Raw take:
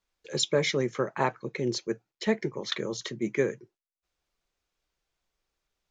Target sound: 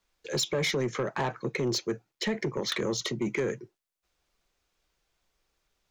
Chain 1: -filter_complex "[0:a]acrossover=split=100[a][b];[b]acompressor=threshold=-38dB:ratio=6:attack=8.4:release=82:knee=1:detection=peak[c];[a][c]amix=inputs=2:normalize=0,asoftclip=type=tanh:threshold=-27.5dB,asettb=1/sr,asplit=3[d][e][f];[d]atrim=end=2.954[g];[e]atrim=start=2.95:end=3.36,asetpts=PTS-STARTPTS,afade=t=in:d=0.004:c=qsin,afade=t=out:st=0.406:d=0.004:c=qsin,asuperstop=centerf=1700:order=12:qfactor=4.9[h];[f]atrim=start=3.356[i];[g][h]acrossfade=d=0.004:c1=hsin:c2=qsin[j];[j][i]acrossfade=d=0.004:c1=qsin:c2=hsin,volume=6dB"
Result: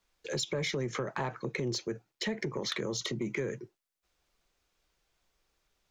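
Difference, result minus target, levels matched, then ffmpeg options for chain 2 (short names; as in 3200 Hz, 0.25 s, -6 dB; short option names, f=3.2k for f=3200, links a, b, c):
compressor: peak gain reduction +7 dB
-filter_complex "[0:a]acrossover=split=100[a][b];[b]acompressor=threshold=-29.5dB:ratio=6:attack=8.4:release=82:knee=1:detection=peak[c];[a][c]amix=inputs=2:normalize=0,asoftclip=type=tanh:threshold=-27.5dB,asettb=1/sr,asplit=3[d][e][f];[d]atrim=end=2.954[g];[e]atrim=start=2.95:end=3.36,asetpts=PTS-STARTPTS,afade=t=in:d=0.004:c=qsin,afade=t=out:st=0.406:d=0.004:c=qsin,asuperstop=centerf=1700:order=12:qfactor=4.9[h];[f]atrim=start=3.356[i];[g][h]acrossfade=d=0.004:c1=hsin:c2=qsin[j];[j][i]acrossfade=d=0.004:c1=qsin:c2=hsin,volume=6dB"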